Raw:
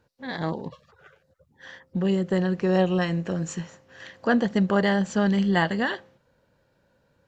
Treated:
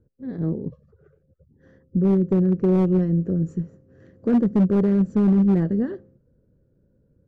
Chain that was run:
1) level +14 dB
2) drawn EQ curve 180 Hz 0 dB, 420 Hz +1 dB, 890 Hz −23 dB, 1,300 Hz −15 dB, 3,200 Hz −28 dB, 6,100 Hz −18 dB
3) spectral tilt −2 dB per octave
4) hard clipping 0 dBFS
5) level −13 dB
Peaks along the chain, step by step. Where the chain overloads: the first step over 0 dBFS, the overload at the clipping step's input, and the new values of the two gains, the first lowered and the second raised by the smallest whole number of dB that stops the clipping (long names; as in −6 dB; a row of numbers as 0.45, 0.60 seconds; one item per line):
+5.5, +0.5, +5.0, 0.0, −13.0 dBFS
step 1, 5.0 dB
step 1 +9 dB, step 5 −8 dB